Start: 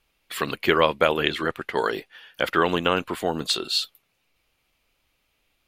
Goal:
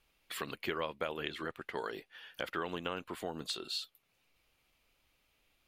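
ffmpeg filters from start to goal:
-af "acompressor=threshold=-41dB:ratio=2,volume=-3.5dB"

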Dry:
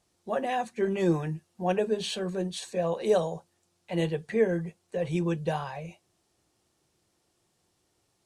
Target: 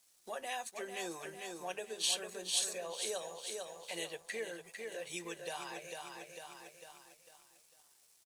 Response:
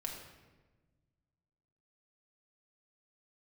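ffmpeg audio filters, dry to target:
-af "highpass=390,aecho=1:1:449|898|1347|1796|2245:0.422|0.19|0.0854|0.0384|0.0173,acompressor=threshold=-46dB:ratio=2,crystalizer=i=9:c=0,aeval=exprs='sgn(val(0))*max(abs(val(0))-0.00119,0)':c=same,volume=-4.5dB"

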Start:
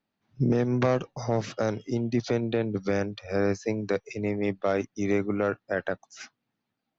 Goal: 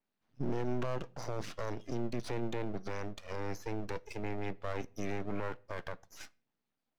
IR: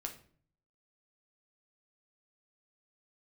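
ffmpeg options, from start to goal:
-filter_complex "[0:a]highpass=120,alimiter=limit=-22.5dB:level=0:latency=1:release=15,aeval=exprs='max(val(0),0)':c=same,asplit=2[a][b];[1:a]atrim=start_sample=2205,afade=t=out:st=0.23:d=0.01,atrim=end_sample=10584[c];[b][c]afir=irnorm=-1:irlink=0,volume=-11.5dB[d];[a][d]amix=inputs=2:normalize=0,adynamicequalizer=threshold=0.00224:dfrequency=5200:dqfactor=0.7:tfrequency=5200:tqfactor=0.7:attack=5:release=100:ratio=0.375:range=1.5:mode=cutabove:tftype=highshelf,volume=-4dB"

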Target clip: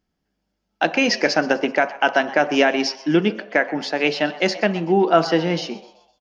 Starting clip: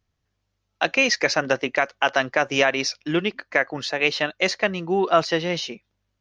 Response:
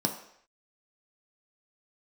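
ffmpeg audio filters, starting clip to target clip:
-filter_complex "[0:a]asplit=5[a][b][c][d][e];[b]adelay=127,afreqshift=130,volume=-19dB[f];[c]adelay=254,afreqshift=260,volume=-25.7dB[g];[d]adelay=381,afreqshift=390,volume=-32.5dB[h];[e]adelay=508,afreqshift=520,volume=-39.2dB[i];[a][f][g][h][i]amix=inputs=5:normalize=0,asplit=2[j][k];[1:a]atrim=start_sample=2205,lowpass=4.4k[l];[k][l]afir=irnorm=-1:irlink=0,volume=-11dB[m];[j][m]amix=inputs=2:normalize=0,volume=-1dB"

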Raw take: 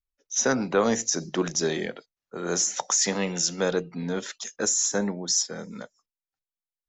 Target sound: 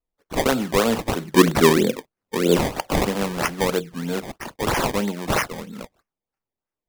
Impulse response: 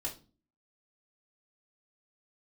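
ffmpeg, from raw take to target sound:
-filter_complex "[0:a]asettb=1/sr,asplit=3[a][b][c];[a]atrim=end=1.354[d];[b]atrim=start=1.35:end=2.58,asetpts=PTS-STARTPTS,afade=t=in:d=0.004:c=qsin,afade=t=out:st=1.226:d=0.004:c=qsin,equalizer=f=125:t=o:w=1:g=7,equalizer=f=250:t=o:w=1:g=10,equalizer=f=500:t=o:w=1:g=9,equalizer=f=1k:t=o:w=1:g=-11,equalizer=f=2k:t=o:w=1:g=-8,equalizer=f=4k:t=o:w=1:g=7[e];[c]atrim=start=2.576[f];[d][e]acrossfade=d=0.004:c1=hsin:c2=qsin[g];[g][f]acrossfade=d=0.004:c1=qsin:c2=hsin,acrusher=samples=22:mix=1:aa=0.000001:lfo=1:lforange=22:lforate=3.1,volume=3dB"

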